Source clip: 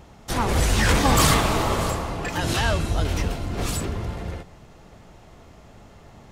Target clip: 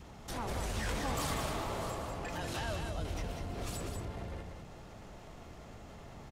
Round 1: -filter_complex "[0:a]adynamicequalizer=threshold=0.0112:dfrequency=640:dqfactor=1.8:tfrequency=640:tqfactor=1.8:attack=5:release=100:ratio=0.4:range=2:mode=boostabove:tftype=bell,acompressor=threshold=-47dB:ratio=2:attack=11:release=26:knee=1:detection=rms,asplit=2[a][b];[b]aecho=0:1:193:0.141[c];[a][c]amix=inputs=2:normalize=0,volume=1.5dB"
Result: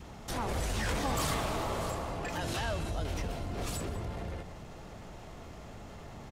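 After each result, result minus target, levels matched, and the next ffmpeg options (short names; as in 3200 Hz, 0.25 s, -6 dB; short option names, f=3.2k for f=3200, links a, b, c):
echo-to-direct -11 dB; compressor: peak gain reduction -4 dB
-filter_complex "[0:a]adynamicequalizer=threshold=0.0112:dfrequency=640:dqfactor=1.8:tfrequency=640:tqfactor=1.8:attack=5:release=100:ratio=0.4:range=2:mode=boostabove:tftype=bell,acompressor=threshold=-47dB:ratio=2:attack=11:release=26:knee=1:detection=rms,asplit=2[a][b];[b]aecho=0:1:193:0.501[c];[a][c]amix=inputs=2:normalize=0,volume=1.5dB"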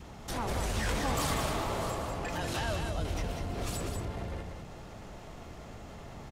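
compressor: peak gain reduction -4 dB
-filter_complex "[0:a]adynamicequalizer=threshold=0.0112:dfrequency=640:dqfactor=1.8:tfrequency=640:tqfactor=1.8:attack=5:release=100:ratio=0.4:range=2:mode=boostabove:tftype=bell,acompressor=threshold=-55.5dB:ratio=2:attack=11:release=26:knee=1:detection=rms,asplit=2[a][b];[b]aecho=0:1:193:0.501[c];[a][c]amix=inputs=2:normalize=0,volume=1.5dB"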